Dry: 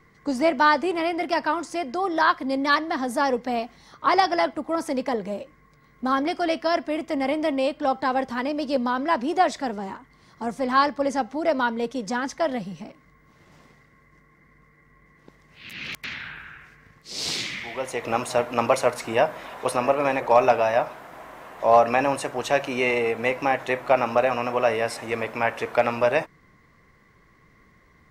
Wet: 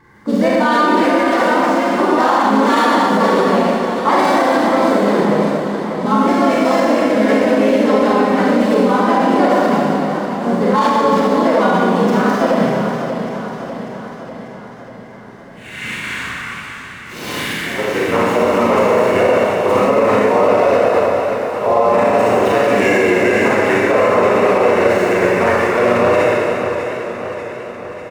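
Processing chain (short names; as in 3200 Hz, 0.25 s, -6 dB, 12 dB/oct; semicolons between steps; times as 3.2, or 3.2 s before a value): median filter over 9 samples; notch comb 810 Hz; harmoniser -4 st 0 dB; Schroeder reverb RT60 1.9 s, combs from 30 ms, DRR -6 dB; maximiser +8 dB; warbling echo 0.594 s, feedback 59%, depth 65 cents, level -9 dB; gain -4 dB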